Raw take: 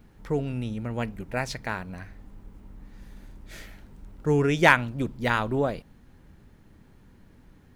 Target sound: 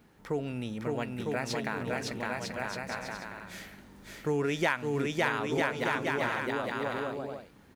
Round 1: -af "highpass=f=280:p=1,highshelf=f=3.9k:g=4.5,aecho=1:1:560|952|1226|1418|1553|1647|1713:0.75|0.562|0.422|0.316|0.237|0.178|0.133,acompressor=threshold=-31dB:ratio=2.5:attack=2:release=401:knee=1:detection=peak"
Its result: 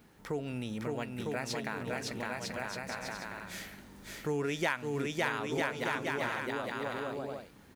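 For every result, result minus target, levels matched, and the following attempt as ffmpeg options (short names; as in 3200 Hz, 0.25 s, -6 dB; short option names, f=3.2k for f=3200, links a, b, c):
compressor: peak gain reduction +4 dB; 8000 Hz band +3.5 dB
-af "highpass=f=280:p=1,highshelf=f=3.9k:g=4.5,aecho=1:1:560|952|1226|1418|1553|1647|1713:0.75|0.562|0.422|0.316|0.237|0.178|0.133,acompressor=threshold=-25dB:ratio=2.5:attack=2:release=401:knee=1:detection=peak"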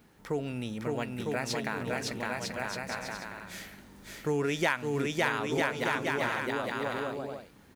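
8000 Hz band +3.0 dB
-af "highpass=f=280:p=1,aecho=1:1:560|952|1226|1418|1553|1647|1713:0.75|0.562|0.422|0.316|0.237|0.178|0.133,acompressor=threshold=-25dB:ratio=2.5:attack=2:release=401:knee=1:detection=peak"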